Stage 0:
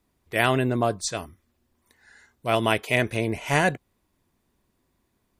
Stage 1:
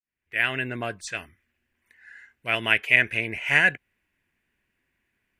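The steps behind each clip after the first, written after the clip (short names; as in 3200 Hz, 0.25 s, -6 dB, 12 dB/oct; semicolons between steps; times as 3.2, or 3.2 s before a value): opening faded in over 0.76 s; band shelf 2100 Hz +16 dB 1.2 oct; gain -8.5 dB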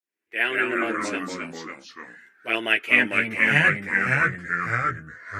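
chorus voices 2, 0.4 Hz, delay 11 ms, depth 2.7 ms; high-pass sweep 340 Hz -> 150 Hz, 2.63–3.2; echoes that change speed 0.124 s, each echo -2 st, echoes 3; gain +2.5 dB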